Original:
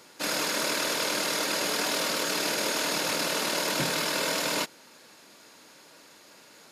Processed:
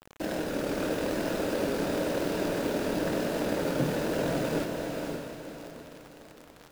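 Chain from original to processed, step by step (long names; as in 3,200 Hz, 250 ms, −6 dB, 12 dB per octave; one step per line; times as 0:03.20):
running median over 41 samples
pitch vibrato 1 Hz 88 cents
in parallel at −1 dB: downward compressor, threshold −47 dBFS, peak gain reduction 17.5 dB
on the sum: bit-depth reduction 8 bits, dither none
feedback delay with all-pass diffusion 532 ms, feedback 41%, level −3.5 dB
level +3.5 dB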